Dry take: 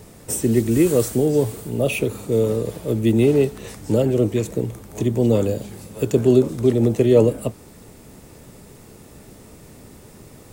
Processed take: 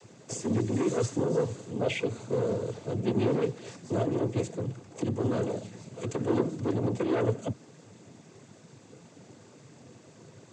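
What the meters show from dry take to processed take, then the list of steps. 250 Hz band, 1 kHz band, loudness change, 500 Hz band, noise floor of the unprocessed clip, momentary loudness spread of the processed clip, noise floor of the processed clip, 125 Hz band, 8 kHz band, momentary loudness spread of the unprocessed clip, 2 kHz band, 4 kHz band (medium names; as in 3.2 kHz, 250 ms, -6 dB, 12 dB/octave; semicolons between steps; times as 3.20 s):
-11.0 dB, -2.0 dB, -11.0 dB, -11.5 dB, -45 dBFS, 9 LU, -55 dBFS, -10.0 dB, -12.0 dB, 11 LU, -7.0 dB, -7.5 dB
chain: saturation -15 dBFS, distortion -10 dB; noise-vocoded speech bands 16; trim -6.5 dB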